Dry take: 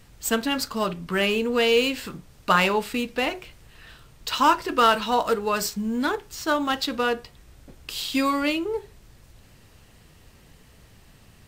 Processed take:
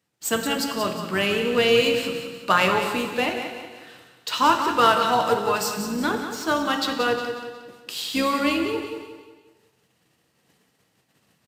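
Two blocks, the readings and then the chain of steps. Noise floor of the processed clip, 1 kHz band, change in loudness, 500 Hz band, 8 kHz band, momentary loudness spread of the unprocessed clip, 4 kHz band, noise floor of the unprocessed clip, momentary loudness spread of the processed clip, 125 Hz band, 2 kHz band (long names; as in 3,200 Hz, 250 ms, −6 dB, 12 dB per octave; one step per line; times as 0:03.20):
−68 dBFS, +1.5 dB, +1.0 dB, +2.0 dB, +1.5 dB, 13 LU, +1.5 dB, −53 dBFS, 16 LU, +1.5 dB, +1.5 dB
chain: sub-octave generator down 2 octaves, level −1 dB
Bessel high-pass filter 190 Hz, order 4
noise gate −54 dBFS, range −20 dB
repeating echo 181 ms, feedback 42%, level −9 dB
reverb whose tail is shaped and stops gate 490 ms falling, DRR 6 dB
downsampling to 32,000 Hz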